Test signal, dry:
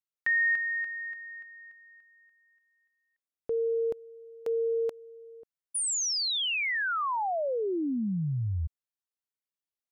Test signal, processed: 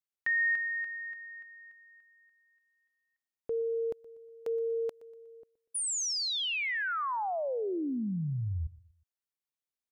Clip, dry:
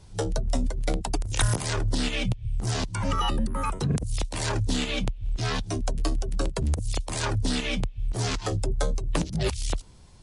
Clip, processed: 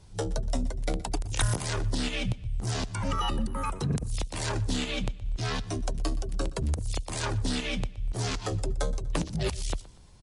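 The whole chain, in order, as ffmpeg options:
-af "aecho=1:1:121|242|363:0.1|0.039|0.0152,volume=-3dB"

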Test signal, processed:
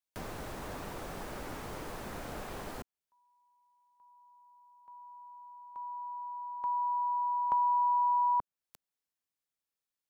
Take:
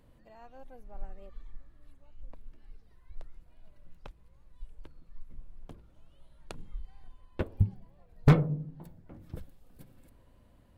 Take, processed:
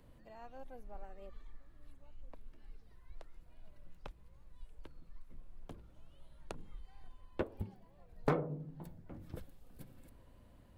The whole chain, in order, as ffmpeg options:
-filter_complex "[0:a]acrossover=split=260|1600[a][b][c];[a]acompressor=threshold=-44dB:ratio=4[d];[b]acompressor=threshold=-28dB:ratio=4[e];[c]acompressor=threshold=-53dB:ratio=4[f];[d][e][f]amix=inputs=3:normalize=0"

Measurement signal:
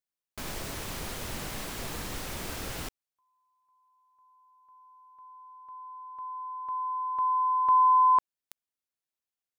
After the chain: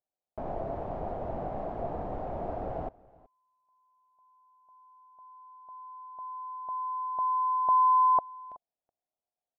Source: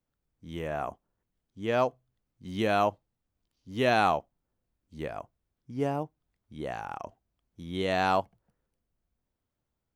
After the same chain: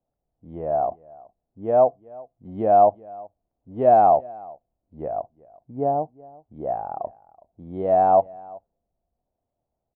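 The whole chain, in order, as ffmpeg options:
-af "lowpass=f=700:t=q:w=4.9,aecho=1:1:374:0.0708"

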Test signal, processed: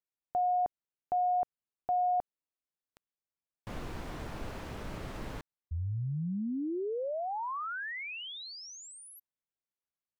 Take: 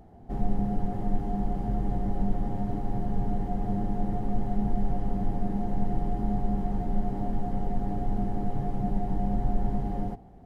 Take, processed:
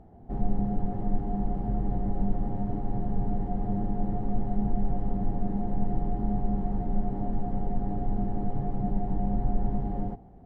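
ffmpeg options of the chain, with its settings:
-af "lowpass=f=1.2k:p=1"

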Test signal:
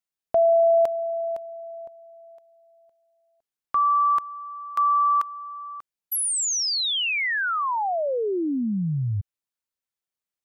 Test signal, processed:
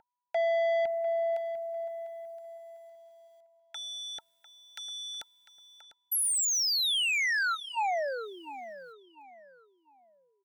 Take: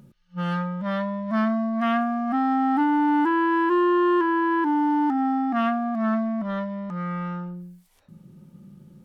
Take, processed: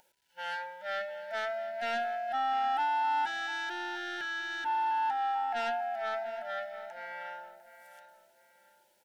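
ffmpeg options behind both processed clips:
-filter_complex "[0:a]highpass=f=670:w=0.5412,highpass=f=670:w=1.3066,asoftclip=type=tanh:threshold=-25dB,acrusher=bits=11:mix=0:aa=0.000001,aeval=exprs='val(0)+0.00355*sin(2*PI*980*n/s)':c=same,asuperstop=centerf=1100:order=20:qfactor=2.8,asplit=2[a][b];[b]adelay=699,lowpass=f=4k:p=1,volume=-13dB,asplit=2[c][d];[d]adelay=699,lowpass=f=4k:p=1,volume=0.32,asplit=2[e][f];[f]adelay=699,lowpass=f=4k:p=1,volume=0.32[g];[c][e][g]amix=inputs=3:normalize=0[h];[a][h]amix=inputs=2:normalize=0"

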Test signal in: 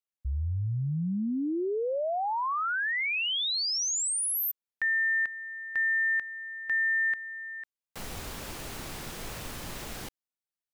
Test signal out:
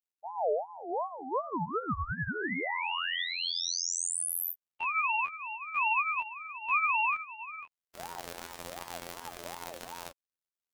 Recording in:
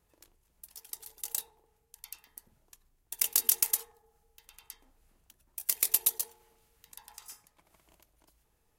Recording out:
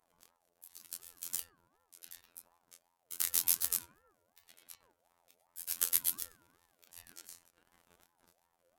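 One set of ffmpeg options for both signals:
-af "flanger=delay=18.5:depth=4.9:speed=0.82,afftfilt=real='hypot(re,im)*cos(PI*b)':imag='0':win_size=2048:overlap=0.75,aeval=exprs='val(0)*sin(2*PI*730*n/s+730*0.3/2.7*sin(2*PI*2.7*n/s))':c=same,volume=5.5dB"

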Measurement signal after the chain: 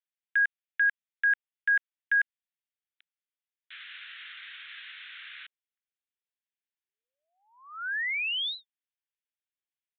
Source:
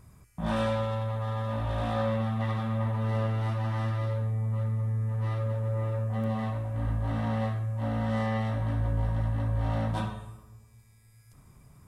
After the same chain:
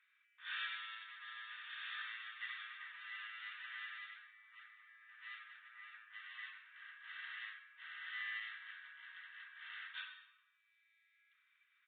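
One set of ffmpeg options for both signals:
-af "asuperpass=centerf=3100:order=12:qfactor=0.66,aresample=8000,aresample=44100,volume=-1dB"

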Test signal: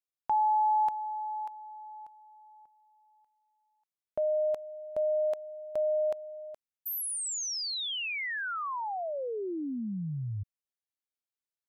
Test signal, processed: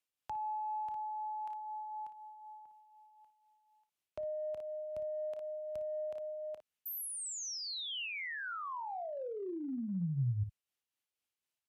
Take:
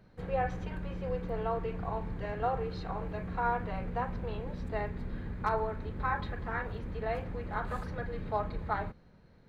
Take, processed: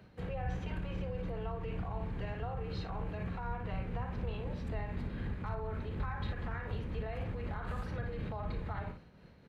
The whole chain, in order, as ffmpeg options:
-filter_complex "[0:a]acontrast=43,equalizer=f=2.8k:t=o:w=0.56:g=6,aecho=1:1:30|57:0.168|0.299,tremolo=f=4:d=0.4,highpass=42,acrossover=split=150[a][b];[b]acompressor=threshold=-37dB:ratio=5:attack=0.43:release=102:knee=2.83:detection=peak[c];[a][c]amix=inputs=2:normalize=0,aresample=32000,aresample=44100,volume=-2dB"

